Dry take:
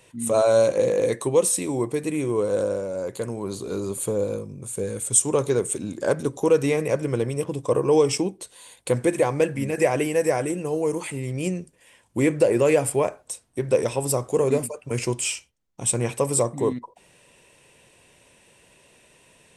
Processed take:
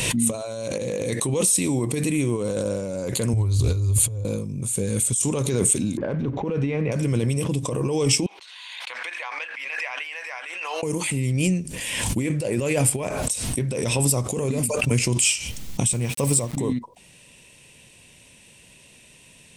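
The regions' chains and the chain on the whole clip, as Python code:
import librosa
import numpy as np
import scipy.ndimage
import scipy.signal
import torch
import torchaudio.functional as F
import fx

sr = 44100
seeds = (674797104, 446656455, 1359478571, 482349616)

y = fx.chain(x, sr, fx.low_shelf_res(hz=140.0, db=12.5, q=3.0),
    fx.over_compress(threshold_db=-27.0, ratio=-0.5),
    fx.doppler_dist(depth_ms=0.15), at=(3.33, 4.25))
y = fx.chain(y, sr, fx.law_mismatch(coded='mu'),
    fx.env_lowpass(base_hz=1500.0, full_db=-13.0),
    fx.lowpass(hz=2100.0, slope=12), at=(5.97, 6.92))
y = fx.chain(y, sr, fx.highpass(hz=1000.0, slope=24),
    fx.air_absorb(metres=280.0),
    fx.pre_swell(db_per_s=84.0), at=(8.26, 10.83))
y = fx.chain(y, sr, fx.peak_eq(hz=62.0, db=5.5, octaves=1.1),
    fx.sample_gate(floor_db=-37.0),
    fx.upward_expand(threshold_db=-42.0, expansion=2.5), at=(15.93, 16.57))
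y = fx.over_compress(y, sr, threshold_db=-24.0, ratio=-1.0)
y = fx.band_shelf(y, sr, hz=770.0, db=-8.5, octaves=2.7)
y = fx.pre_swell(y, sr, db_per_s=26.0)
y = y * librosa.db_to_amplitude(4.0)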